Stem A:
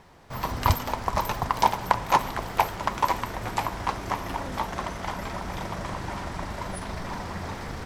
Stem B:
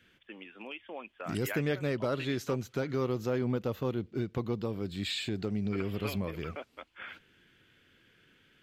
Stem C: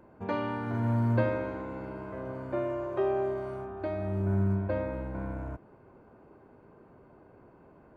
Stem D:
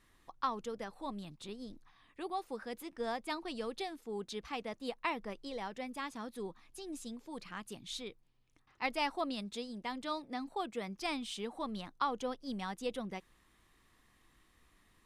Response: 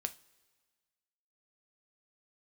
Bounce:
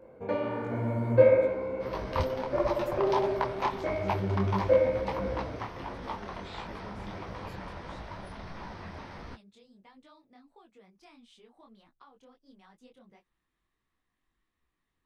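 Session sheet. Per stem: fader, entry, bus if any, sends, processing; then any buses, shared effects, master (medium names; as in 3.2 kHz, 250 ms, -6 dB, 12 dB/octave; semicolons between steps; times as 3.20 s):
-5.0 dB, 1.50 s, no send, Savitzky-Golay filter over 15 samples
-10.5 dB, 1.40 s, no send, level-controlled noise filter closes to 350 Hz, open at -28 dBFS
+1.0 dB, 0.00 s, no send, small resonant body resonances 510/2200 Hz, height 16 dB
-10.0 dB, 0.00 s, no send, treble shelf 5.9 kHz -9.5 dB; compression 6:1, threshold -39 dBFS, peak gain reduction 10.5 dB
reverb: none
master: detune thickener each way 52 cents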